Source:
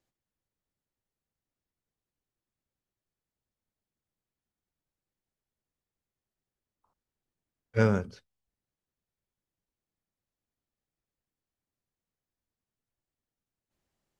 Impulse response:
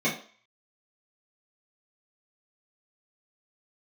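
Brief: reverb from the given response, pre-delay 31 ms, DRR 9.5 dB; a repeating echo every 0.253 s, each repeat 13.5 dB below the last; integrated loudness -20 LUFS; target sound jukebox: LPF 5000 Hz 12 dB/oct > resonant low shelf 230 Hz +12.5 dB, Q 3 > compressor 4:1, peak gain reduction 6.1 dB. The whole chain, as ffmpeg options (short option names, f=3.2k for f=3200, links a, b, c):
-filter_complex "[0:a]aecho=1:1:253|506:0.211|0.0444,asplit=2[a][b];[1:a]atrim=start_sample=2205,adelay=31[c];[b][c]afir=irnorm=-1:irlink=0,volume=-22.5dB[d];[a][d]amix=inputs=2:normalize=0,lowpass=5k,lowshelf=f=230:t=q:w=3:g=12.5,acompressor=threshold=-14dB:ratio=4,volume=1.5dB"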